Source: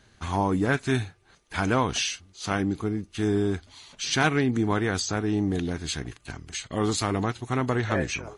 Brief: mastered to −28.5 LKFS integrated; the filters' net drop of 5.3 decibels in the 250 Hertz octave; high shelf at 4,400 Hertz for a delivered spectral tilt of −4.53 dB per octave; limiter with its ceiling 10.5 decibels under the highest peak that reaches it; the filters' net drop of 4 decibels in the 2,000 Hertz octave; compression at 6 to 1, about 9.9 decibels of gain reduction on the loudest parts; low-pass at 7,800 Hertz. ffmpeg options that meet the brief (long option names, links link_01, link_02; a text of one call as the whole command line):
ffmpeg -i in.wav -af "lowpass=7800,equalizer=frequency=250:width_type=o:gain=-7,equalizer=frequency=2000:width_type=o:gain=-4.5,highshelf=frequency=4400:gain=-5.5,acompressor=threshold=-32dB:ratio=6,volume=13dB,alimiter=limit=-18.5dB:level=0:latency=1" out.wav